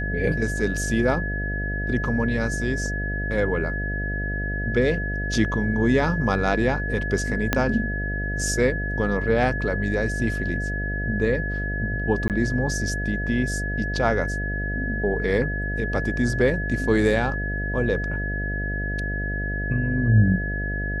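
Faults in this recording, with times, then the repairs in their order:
buzz 50 Hz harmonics 14 -28 dBFS
whine 1.7 kHz -29 dBFS
7.53 s: pop -5 dBFS
12.28–12.30 s: dropout 18 ms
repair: de-click; band-stop 1.7 kHz, Q 30; de-hum 50 Hz, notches 14; interpolate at 12.28 s, 18 ms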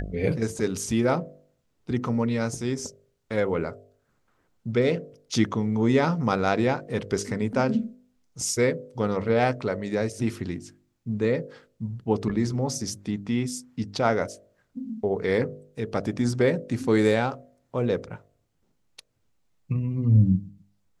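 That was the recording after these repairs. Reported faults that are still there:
7.53 s: pop

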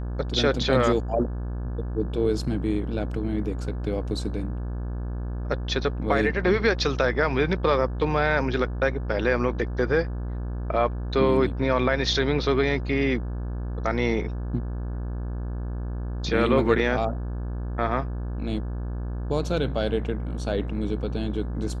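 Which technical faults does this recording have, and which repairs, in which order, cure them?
buzz 60 Hz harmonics 29 -30 dBFS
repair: de-hum 60 Hz, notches 29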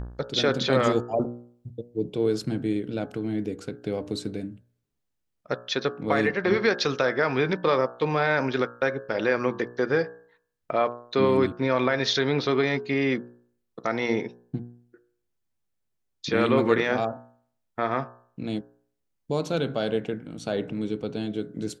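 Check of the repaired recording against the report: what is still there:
nothing left

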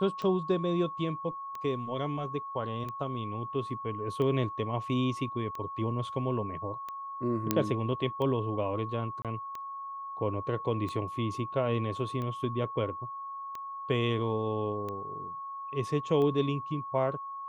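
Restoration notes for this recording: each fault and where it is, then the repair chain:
tick 45 rpm -25 dBFS
whine 1.1 kHz -37 dBFS
7.51 s: pop -10 dBFS
9.22–9.25 s: dropout 27 ms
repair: de-click; band-stop 1.1 kHz, Q 30; interpolate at 9.22 s, 27 ms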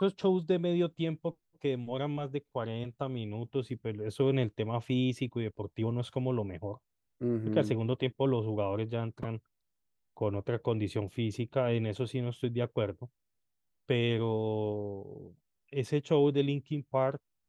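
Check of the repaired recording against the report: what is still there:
7.51 s: pop

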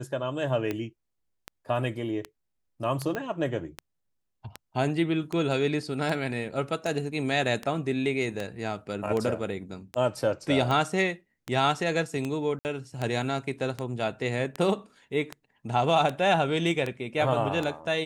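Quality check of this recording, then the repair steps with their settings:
tick 78 rpm -17 dBFS
3.15 s: pop -18 dBFS
12.59–12.65 s: dropout 59 ms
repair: de-click; interpolate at 12.59 s, 59 ms

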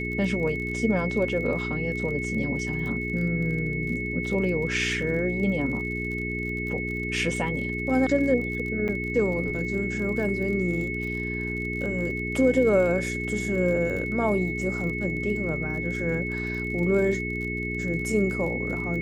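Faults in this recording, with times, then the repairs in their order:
crackle 38 per s -34 dBFS
hum 60 Hz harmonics 7 -32 dBFS
whine 2.2 kHz -31 dBFS
8.88–8.89 s: dropout 7.2 ms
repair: de-click; de-hum 60 Hz, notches 7; band-stop 2.2 kHz, Q 30; interpolate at 8.88 s, 7.2 ms

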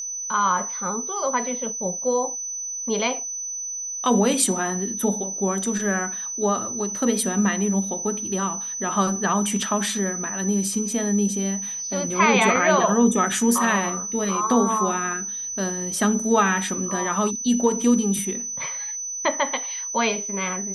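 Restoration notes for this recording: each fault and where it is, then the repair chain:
whine 6 kHz -28 dBFS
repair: band-stop 6 kHz, Q 30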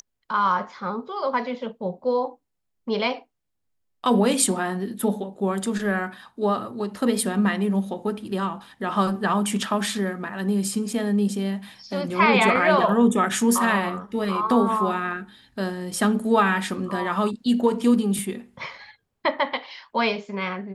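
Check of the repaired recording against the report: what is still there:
nothing left

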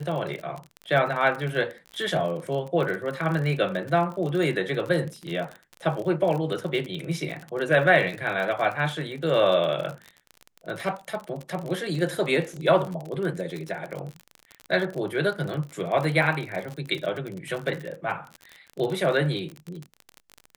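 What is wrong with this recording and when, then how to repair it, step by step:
crackle 40 per s -30 dBFS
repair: de-click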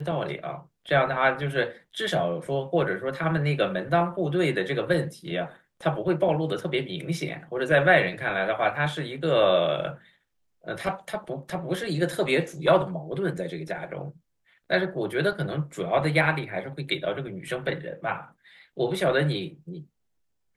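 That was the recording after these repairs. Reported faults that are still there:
nothing left

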